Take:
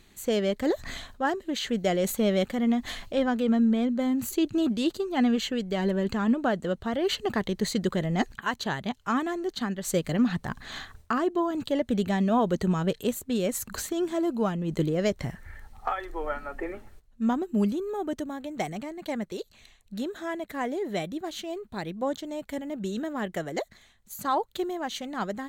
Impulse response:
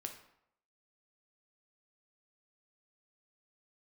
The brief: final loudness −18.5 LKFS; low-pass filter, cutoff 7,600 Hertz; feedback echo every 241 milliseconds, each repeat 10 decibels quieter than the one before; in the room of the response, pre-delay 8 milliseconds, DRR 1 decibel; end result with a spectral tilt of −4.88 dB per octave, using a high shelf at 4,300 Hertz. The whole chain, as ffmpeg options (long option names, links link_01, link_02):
-filter_complex "[0:a]lowpass=7600,highshelf=frequency=4300:gain=5,aecho=1:1:241|482|723|964:0.316|0.101|0.0324|0.0104,asplit=2[link_01][link_02];[1:a]atrim=start_sample=2205,adelay=8[link_03];[link_02][link_03]afir=irnorm=-1:irlink=0,volume=1.5dB[link_04];[link_01][link_04]amix=inputs=2:normalize=0,volume=7dB"